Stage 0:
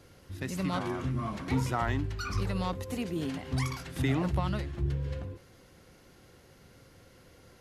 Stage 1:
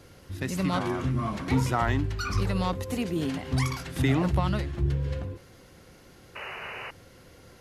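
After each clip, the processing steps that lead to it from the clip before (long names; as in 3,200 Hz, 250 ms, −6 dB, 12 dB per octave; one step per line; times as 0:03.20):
sound drawn into the spectrogram noise, 0:06.35–0:06.91, 360–3,000 Hz −43 dBFS
level +4.5 dB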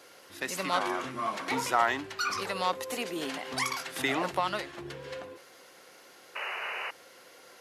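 high-pass filter 540 Hz 12 dB per octave
level +3 dB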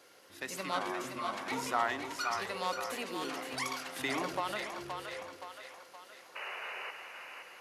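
echo with a time of its own for lows and highs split 570 Hz, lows 112 ms, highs 521 ms, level −6 dB
level −6 dB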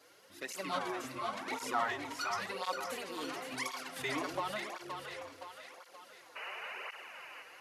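through-zero flanger with one copy inverted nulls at 0.94 Hz, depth 5.8 ms
level +1 dB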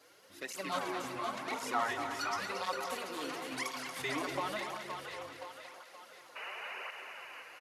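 multi-tap delay 232/339 ms −8/−14 dB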